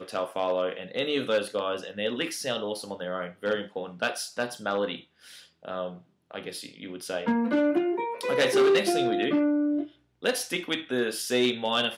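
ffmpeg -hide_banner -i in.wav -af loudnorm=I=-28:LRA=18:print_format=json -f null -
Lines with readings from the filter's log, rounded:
"input_i" : "-27.5",
"input_tp" : "-11.1",
"input_lra" : "6.7",
"input_thresh" : "-38.0",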